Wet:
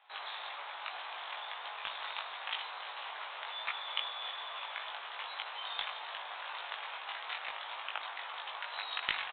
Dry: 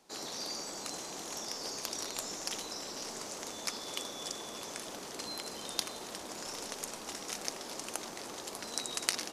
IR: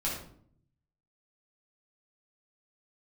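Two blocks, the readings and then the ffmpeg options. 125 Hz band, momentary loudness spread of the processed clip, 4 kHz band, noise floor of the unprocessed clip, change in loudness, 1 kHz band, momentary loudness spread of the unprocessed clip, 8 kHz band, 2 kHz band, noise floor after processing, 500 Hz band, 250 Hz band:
under -15 dB, 6 LU, 0.0 dB, -45 dBFS, -1.0 dB, +4.5 dB, 5 LU, under -40 dB, +6.5 dB, -45 dBFS, -8.0 dB, under -20 dB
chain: -filter_complex "[0:a]highpass=f=860:w=0.5412,highpass=f=860:w=1.3066,volume=17dB,asoftclip=hard,volume=-17dB,asplit=2[a][b];[b]adelay=19,volume=-2dB[c];[a][c]amix=inputs=2:normalize=0,asplit=2[d][e];[1:a]atrim=start_sample=2205[f];[e][f]afir=irnorm=-1:irlink=0,volume=-20dB[g];[d][g]amix=inputs=2:normalize=0,aresample=8000,aresample=44100,volume=4dB"

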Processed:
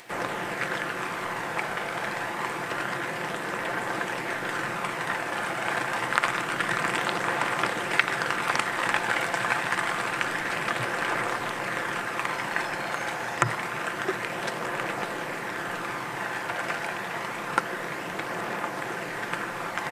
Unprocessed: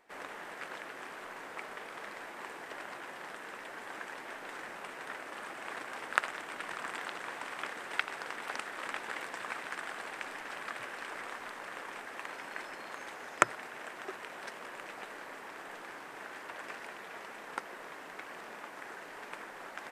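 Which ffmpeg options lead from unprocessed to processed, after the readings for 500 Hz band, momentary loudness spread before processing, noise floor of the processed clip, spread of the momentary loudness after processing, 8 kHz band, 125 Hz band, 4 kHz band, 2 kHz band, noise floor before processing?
+13.0 dB, 9 LU, -34 dBFS, 6 LU, +10.5 dB, +23.5 dB, +12.5 dB, +12.0 dB, -48 dBFS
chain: -filter_complex "[0:a]acrossover=split=2400[a][b];[a]aecho=1:1:5.8:0.37[c];[b]acompressor=mode=upward:threshold=-57dB:ratio=2.5[d];[c][d]amix=inputs=2:normalize=0,aphaser=in_gain=1:out_gain=1:delay=1.4:decay=0.2:speed=0.27:type=triangular,equalizer=f=120:w=1.4:g=13,alimiter=level_in=14dB:limit=-1dB:release=50:level=0:latency=1,volume=-1dB"

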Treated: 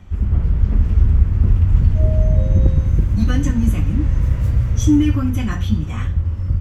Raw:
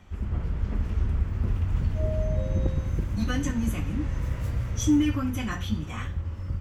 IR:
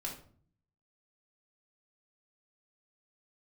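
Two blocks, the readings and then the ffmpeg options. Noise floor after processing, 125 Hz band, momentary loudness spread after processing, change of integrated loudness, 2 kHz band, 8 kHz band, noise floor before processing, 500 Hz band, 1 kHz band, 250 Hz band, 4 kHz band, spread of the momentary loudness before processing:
-23 dBFS, +12.0 dB, 6 LU, +11.0 dB, +3.0 dB, +3.0 dB, -35 dBFS, +5.0 dB, +3.5 dB, +7.5 dB, +3.0 dB, 8 LU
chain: -af "lowshelf=f=230:g=10.5,volume=3dB"

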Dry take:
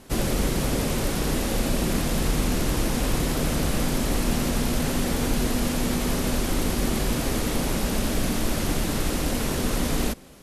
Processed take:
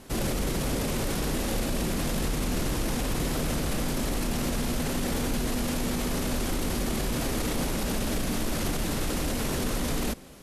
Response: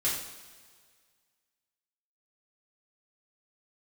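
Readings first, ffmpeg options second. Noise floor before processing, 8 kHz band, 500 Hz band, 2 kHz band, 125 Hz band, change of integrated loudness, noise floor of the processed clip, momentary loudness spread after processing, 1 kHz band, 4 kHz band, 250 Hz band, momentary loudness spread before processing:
-27 dBFS, -3.5 dB, -3.5 dB, -3.5 dB, -4.0 dB, -4.0 dB, -30 dBFS, 1 LU, -3.5 dB, -3.5 dB, -4.0 dB, 1 LU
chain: -af "alimiter=limit=-20dB:level=0:latency=1:release=17"

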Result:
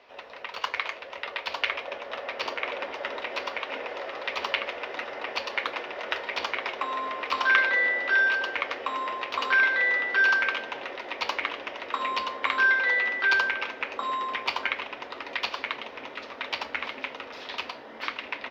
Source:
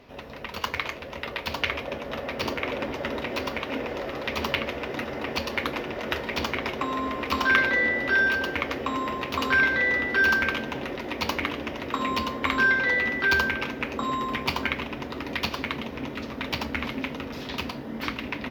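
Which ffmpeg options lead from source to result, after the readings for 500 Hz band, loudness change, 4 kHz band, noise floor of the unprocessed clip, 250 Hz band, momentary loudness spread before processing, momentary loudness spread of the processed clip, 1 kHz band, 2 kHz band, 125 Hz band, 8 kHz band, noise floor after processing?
-4.5 dB, -0.5 dB, -1.0 dB, -38 dBFS, -15.0 dB, 12 LU, 14 LU, -0.5 dB, 0.0 dB, under -20 dB, n/a, -44 dBFS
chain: -filter_complex "[0:a]acrossover=split=460 5800:gain=0.0631 1 0.112[a][b][c];[a][b][c]amix=inputs=3:normalize=0"

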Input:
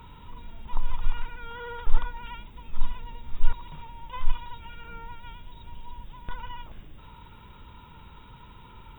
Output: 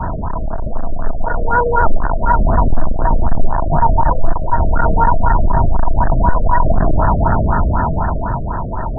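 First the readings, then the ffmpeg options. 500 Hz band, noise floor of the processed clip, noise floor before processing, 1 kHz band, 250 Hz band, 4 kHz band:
+29.0 dB, -20 dBFS, -49 dBFS, +25.5 dB, +29.0 dB, n/a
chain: -af "aeval=exprs='val(0)+0.5*0.0891*sgn(val(0))':c=same,acompressor=threshold=-24dB:ratio=2.5,acrusher=bits=5:mix=0:aa=0.000001,equalizer=f=660:t=o:w=0.37:g=14.5,aresample=16000,aresample=44100,dynaudnorm=f=200:g=13:m=9dB,adynamicequalizer=threshold=0.01:dfrequency=490:dqfactor=2.1:tfrequency=490:tqfactor=2.1:attack=5:release=100:ratio=0.375:range=3.5:mode=cutabove:tftype=bell,alimiter=level_in=9dB:limit=-1dB:release=50:level=0:latency=1,afftfilt=real='re*lt(b*sr/1024,640*pow(1900/640,0.5+0.5*sin(2*PI*4*pts/sr)))':imag='im*lt(b*sr/1024,640*pow(1900/640,0.5+0.5*sin(2*PI*4*pts/sr)))':win_size=1024:overlap=0.75,volume=-1dB"

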